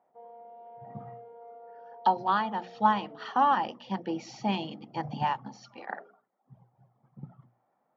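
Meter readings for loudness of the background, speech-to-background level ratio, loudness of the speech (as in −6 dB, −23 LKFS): −49.0 LKFS, 19.0 dB, −30.0 LKFS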